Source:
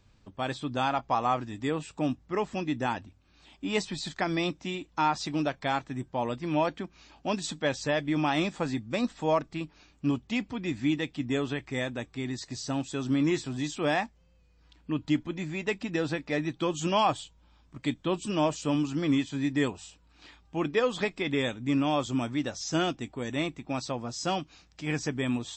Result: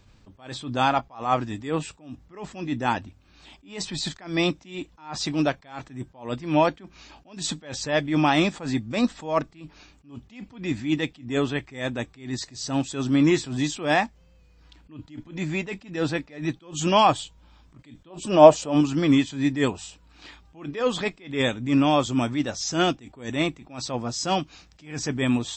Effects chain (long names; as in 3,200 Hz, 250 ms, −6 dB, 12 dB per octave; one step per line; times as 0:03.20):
0:18.10–0:18.81: parametric band 650 Hz +12 dB 1.2 octaves
level that may rise only so fast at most 140 dB per second
level +7 dB